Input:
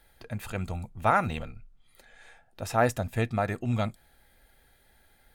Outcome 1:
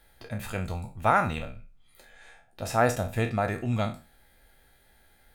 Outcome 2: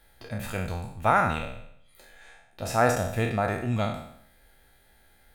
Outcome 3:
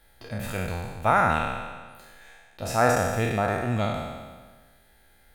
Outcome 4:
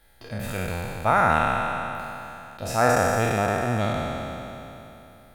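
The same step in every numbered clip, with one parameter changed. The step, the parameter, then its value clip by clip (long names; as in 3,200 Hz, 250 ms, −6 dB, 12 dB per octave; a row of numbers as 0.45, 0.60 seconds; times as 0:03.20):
peak hold with a decay on every bin, RT60: 0.33, 0.69, 1.46, 3.12 seconds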